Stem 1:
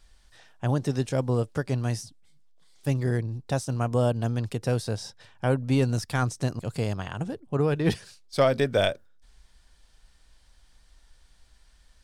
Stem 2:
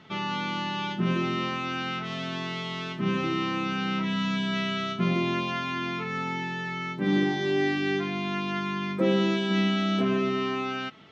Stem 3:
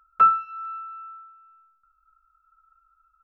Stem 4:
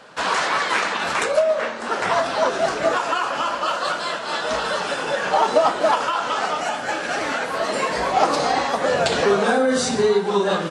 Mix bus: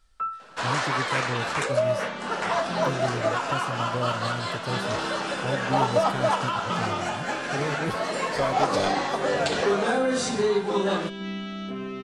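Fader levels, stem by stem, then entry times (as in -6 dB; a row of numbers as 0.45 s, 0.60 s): -6.5 dB, -8.5 dB, -14.0 dB, -5.5 dB; 0.00 s, 1.70 s, 0.00 s, 0.40 s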